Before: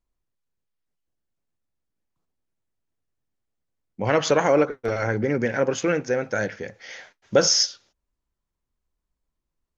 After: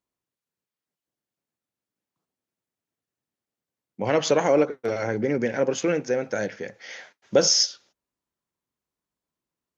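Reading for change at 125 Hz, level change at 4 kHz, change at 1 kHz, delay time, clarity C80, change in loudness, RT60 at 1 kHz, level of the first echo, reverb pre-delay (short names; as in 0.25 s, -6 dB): -4.5 dB, -0.5 dB, -3.0 dB, none, none, -1.0 dB, none, none, none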